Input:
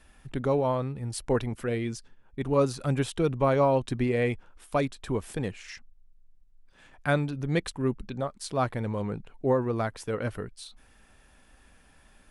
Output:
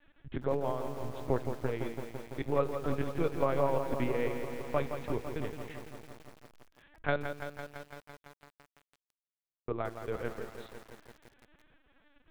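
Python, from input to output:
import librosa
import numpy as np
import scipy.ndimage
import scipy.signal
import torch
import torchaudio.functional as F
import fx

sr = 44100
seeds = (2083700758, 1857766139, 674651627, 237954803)

y = fx.cheby2_highpass(x, sr, hz=1800.0, order=4, stop_db=80, at=(7.31, 9.69))
y = fx.transient(y, sr, attack_db=4, sustain_db=-11)
y = fx.echo_feedback(y, sr, ms=66, feedback_pct=25, wet_db=-19.0)
y = fx.lpc_vocoder(y, sr, seeds[0], excitation='pitch_kept', order=8)
y = fx.echo_crushed(y, sr, ms=168, feedback_pct=80, bits=7, wet_db=-8)
y = y * librosa.db_to_amplitude(-7.5)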